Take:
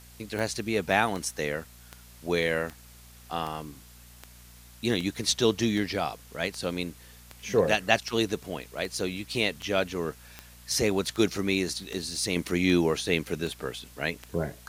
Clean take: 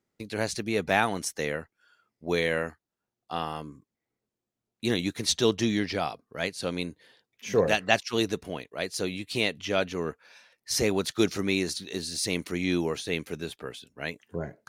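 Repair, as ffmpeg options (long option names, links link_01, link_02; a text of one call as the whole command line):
ffmpeg -i in.wav -af "adeclick=threshold=4,bandreject=frequency=59.7:width_type=h:width=4,bandreject=frequency=119.4:width_type=h:width=4,bandreject=frequency=179.1:width_type=h:width=4,bandreject=frequency=238.8:width_type=h:width=4,afwtdn=0.0022,asetnsamples=nb_out_samples=441:pad=0,asendcmd='12.36 volume volume -4dB',volume=0dB" out.wav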